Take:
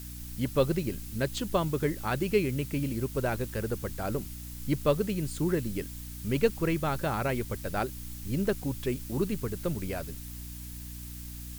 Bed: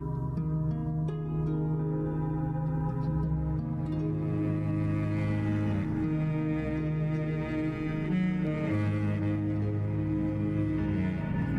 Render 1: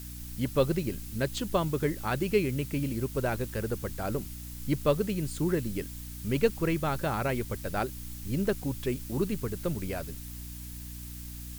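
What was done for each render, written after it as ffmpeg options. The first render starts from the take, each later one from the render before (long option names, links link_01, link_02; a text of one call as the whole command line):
ffmpeg -i in.wav -af anull out.wav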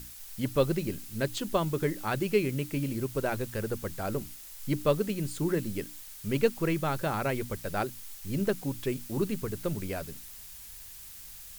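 ffmpeg -i in.wav -af "bandreject=frequency=60:width_type=h:width=6,bandreject=frequency=120:width_type=h:width=6,bandreject=frequency=180:width_type=h:width=6,bandreject=frequency=240:width_type=h:width=6,bandreject=frequency=300:width_type=h:width=6" out.wav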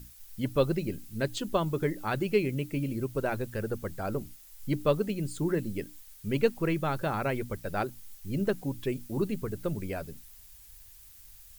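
ffmpeg -i in.wav -af "afftdn=noise_reduction=9:noise_floor=-47" out.wav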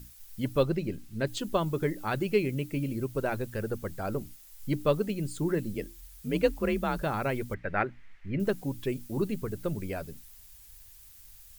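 ffmpeg -i in.wav -filter_complex "[0:a]asettb=1/sr,asplit=3[link_01][link_02][link_03];[link_01]atrim=end=0.634[link_04];[link_02]atrim=start=0.63:end=1.27,asetpts=PTS-STARTPTS,afade=type=in:duration=0.004:curve=qsin,afade=type=out:start_time=0.636:duration=0.004:curve=qsin,highshelf=frequency=7000:gain=-9.5[link_05];[link_03]atrim=start=1.266[link_06];[link_04][link_05]acrossfade=duration=0.004:curve1=hsin:curve2=qsin[link_07];[link_07][link_06]acrossfade=duration=0.004:curve1=qsin:curve2=hsin,asettb=1/sr,asplit=3[link_08][link_09][link_10];[link_08]atrim=end=5.744[link_11];[link_09]atrim=start=5.74:end=7.03,asetpts=PTS-STARTPTS,afade=type=in:duration=0.004:curve=qsin,afade=type=out:start_time=1.286:duration=0.004:curve=qsin,afreqshift=39[link_12];[link_10]atrim=start=7.026[link_13];[link_11][link_12]acrossfade=duration=0.004:curve1=hsin:curve2=qsin[link_14];[link_14][link_13]acrossfade=duration=0.004:curve1=qsin:curve2=hsin,asettb=1/sr,asplit=3[link_15][link_16][link_17];[link_15]atrim=end=7.544[link_18];[link_16]atrim=start=7.54:end=8.4,asetpts=PTS-STARTPTS,afade=type=in:duration=0.004:curve=qsin,afade=type=out:start_time=0.856:duration=0.004:curve=qsin,lowpass=frequency=2000:width_type=q:width=3.8[link_19];[link_17]atrim=start=8.396[link_20];[link_18][link_19]acrossfade=duration=0.004:curve1=hsin:curve2=qsin[link_21];[link_21][link_20]acrossfade=duration=0.004:curve1=qsin:curve2=hsin" out.wav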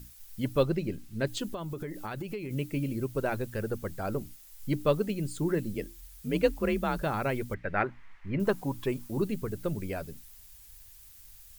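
ffmpeg -i in.wav -filter_complex "[0:a]asettb=1/sr,asplit=3[link_01][link_02][link_03];[link_01]atrim=end=1.524[link_04];[link_02]atrim=start=1.52:end=2.51,asetpts=PTS-STARTPTS,afade=type=in:duration=0.004:curve=qsin,afade=type=out:start_time=0.986:duration=0.004:curve=qsin,acompressor=threshold=-32dB:ratio=12:attack=3.2:release=140:knee=1:detection=peak[link_05];[link_03]atrim=start=2.506[link_06];[link_04][link_05]acrossfade=duration=0.004:curve1=hsin:curve2=qsin[link_07];[link_07][link_06]acrossfade=duration=0.004:curve1=qsin:curve2=hsin,asettb=1/sr,asplit=3[link_08][link_09][link_10];[link_08]atrim=end=7.834[link_11];[link_09]atrim=start=7.83:end=9.11,asetpts=PTS-STARTPTS,afade=type=in:duration=0.004:curve=qsin,afade=type=out:start_time=1.276:duration=0.004:curve=qsin,equalizer=frequency=1000:width_type=o:width=0.85:gain=10.5[link_12];[link_10]atrim=start=9.106[link_13];[link_11][link_12]acrossfade=duration=0.004:curve1=hsin:curve2=qsin[link_14];[link_14][link_13]acrossfade=duration=0.004:curve1=qsin:curve2=hsin" out.wav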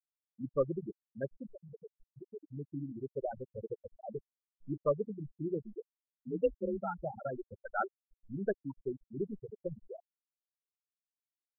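ffmpeg -i in.wav -af "afftfilt=real='re*gte(hypot(re,im),0.158)':imag='im*gte(hypot(re,im),0.158)':win_size=1024:overlap=0.75,lowshelf=frequency=400:gain=-11" out.wav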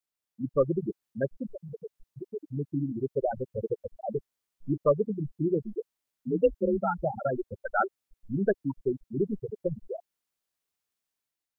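ffmpeg -i in.wav -filter_complex "[0:a]dynaudnorm=framelen=140:gausssize=7:maxgain=5dB,asplit=2[link_01][link_02];[link_02]alimiter=level_in=1dB:limit=-24dB:level=0:latency=1:release=111,volume=-1dB,volume=-2dB[link_03];[link_01][link_03]amix=inputs=2:normalize=0" out.wav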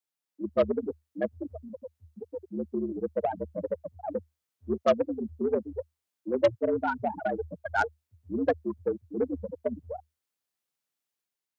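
ffmpeg -i in.wav -af "aeval=exprs='0.266*(cos(1*acos(clip(val(0)/0.266,-1,1)))-cos(1*PI/2))+0.015*(cos(4*acos(clip(val(0)/0.266,-1,1)))-cos(4*PI/2))+0.0422*(cos(6*acos(clip(val(0)/0.266,-1,1)))-cos(6*PI/2))+0.00531*(cos(7*acos(clip(val(0)/0.266,-1,1)))-cos(7*PI/2))+0.0266*(cos(8*acos(clip(val(0)/0.266,-1,1)))-cos(8*PI/2))':channel_layout=same,afreqshift=76" out.wav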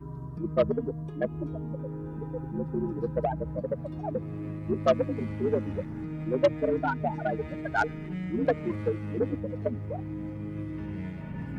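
ffmpeg -i in.wav -i bed.wav -filter_complex "[1:a]volume=-6.5dB[link_01];[0:a][link_01]amix=inputs=2:normalize=0" out.wav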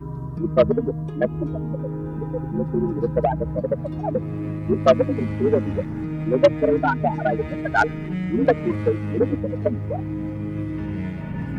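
ffmpeg -i in.wav -af "volume=8dB" out.wav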